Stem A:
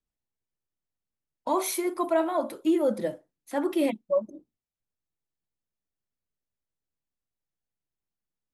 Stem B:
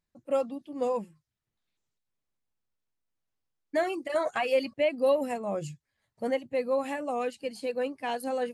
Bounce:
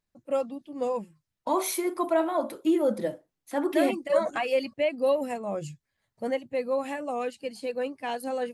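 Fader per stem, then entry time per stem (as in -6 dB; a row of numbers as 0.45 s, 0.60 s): 0.0 dB, 0.0 dB; 0.00 s, 0.00 s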